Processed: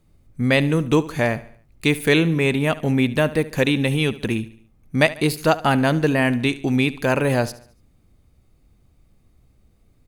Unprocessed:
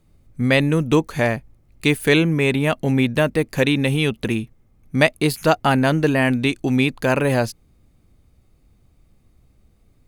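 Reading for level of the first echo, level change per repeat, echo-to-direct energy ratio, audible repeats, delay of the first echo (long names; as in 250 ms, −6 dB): −17.5 dB, −7.0 dB, −16.5 dB, 3, 72 ms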